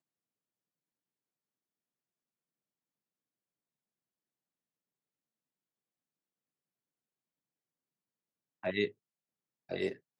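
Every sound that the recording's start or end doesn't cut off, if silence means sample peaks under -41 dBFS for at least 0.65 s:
8.64–8.88

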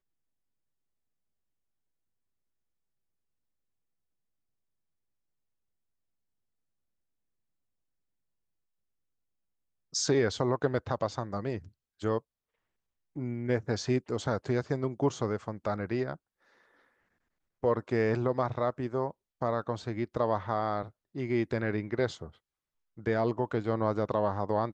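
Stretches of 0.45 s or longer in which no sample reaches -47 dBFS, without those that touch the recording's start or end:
12.19–13.16
16.16–17.63
22.3–22.98

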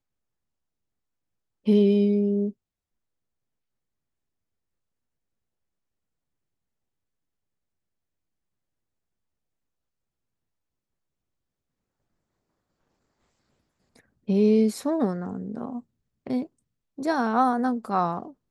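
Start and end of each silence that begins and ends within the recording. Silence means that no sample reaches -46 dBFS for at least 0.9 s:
2.52–13.96

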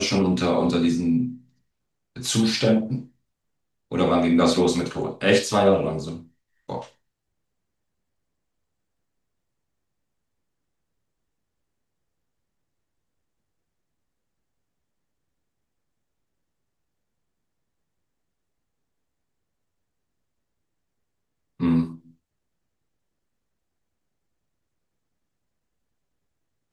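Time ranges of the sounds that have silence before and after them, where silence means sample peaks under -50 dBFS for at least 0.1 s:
2.16–3.09
3.91–6.28
6.69–6.92
21.6–22.12

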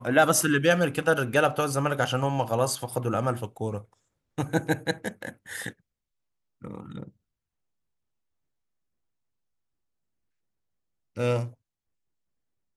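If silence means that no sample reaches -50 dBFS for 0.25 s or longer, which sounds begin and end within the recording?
4.38–5.73
6.62–7.09
11.16–11.54

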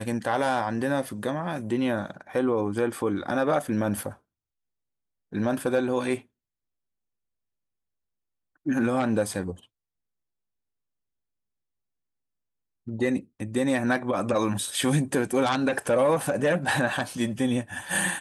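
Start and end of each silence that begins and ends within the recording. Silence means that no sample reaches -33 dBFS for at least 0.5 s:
4.12–5.33
6.18–8.66
9.53–12.88

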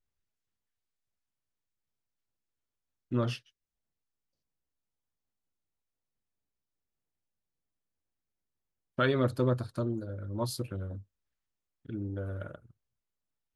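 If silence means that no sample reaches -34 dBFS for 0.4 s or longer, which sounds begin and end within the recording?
3.12–3.36
8.99–10.95
11.9–12.55

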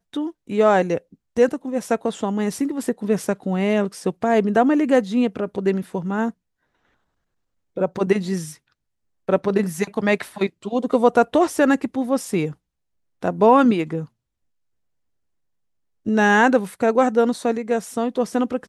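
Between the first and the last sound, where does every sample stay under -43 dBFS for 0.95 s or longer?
6.31–7.76
14.06–16.06

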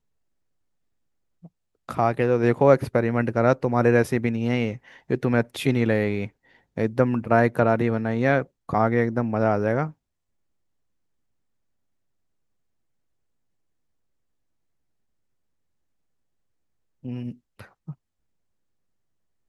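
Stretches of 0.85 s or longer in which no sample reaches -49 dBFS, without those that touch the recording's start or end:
9.93–17.03

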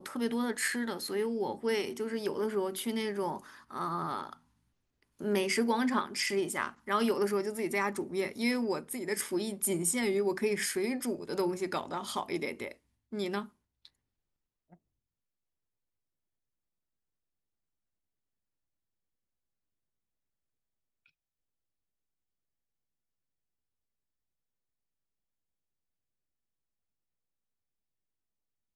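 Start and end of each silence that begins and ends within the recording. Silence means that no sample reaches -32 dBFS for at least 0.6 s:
4.33–5.22

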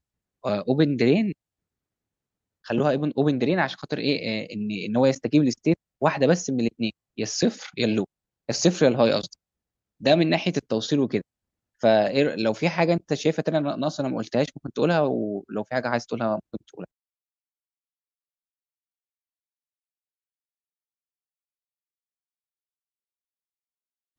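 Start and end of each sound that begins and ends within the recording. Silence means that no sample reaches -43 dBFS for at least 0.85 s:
2.65–16.85

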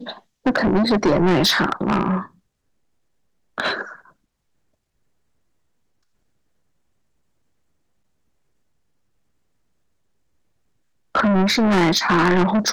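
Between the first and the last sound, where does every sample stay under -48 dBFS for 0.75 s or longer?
2.35–3.58
4.11–11.15

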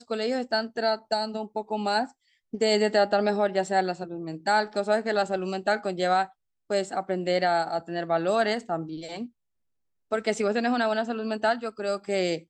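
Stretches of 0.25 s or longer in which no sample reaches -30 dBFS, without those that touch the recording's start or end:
2.05–2.54
6.25–6.7
9.24–10.12

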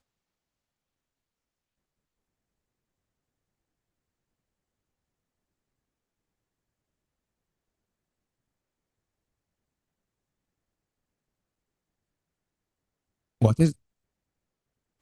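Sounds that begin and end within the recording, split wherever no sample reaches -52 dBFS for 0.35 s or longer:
13.41–13.75

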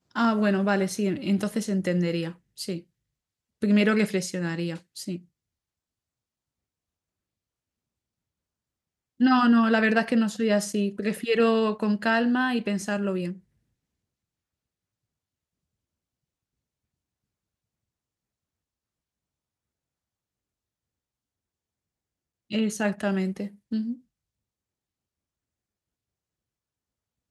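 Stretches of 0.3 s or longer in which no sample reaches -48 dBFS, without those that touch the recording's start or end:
2.82–3.62
5.22–9.2
13.4–22.5

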